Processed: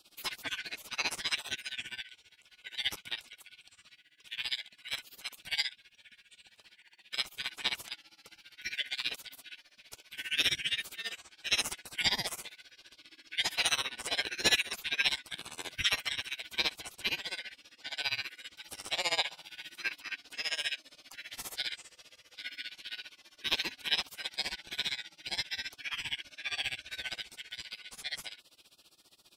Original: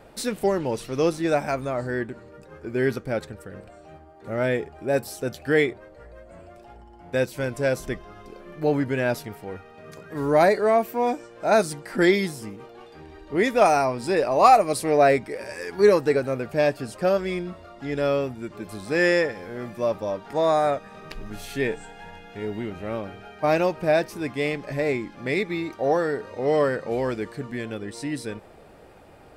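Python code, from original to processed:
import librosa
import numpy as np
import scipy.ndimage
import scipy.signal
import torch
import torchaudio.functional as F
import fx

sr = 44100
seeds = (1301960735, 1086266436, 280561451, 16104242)

y = fx.band_shuffle(x, sr, order='4123')
y = fx.spec_gate(y, sr, threshold_db=-20, keep='weak')
y = y * (1.0 - 0.92 / 2.0 + 0.92 / 2.0 * np.cos(2.0 * np.pi * 15.0 * (np.arange(len(y)) / sr)))
y = F.gain(torch.from_numpy(y), 6.5).numpy()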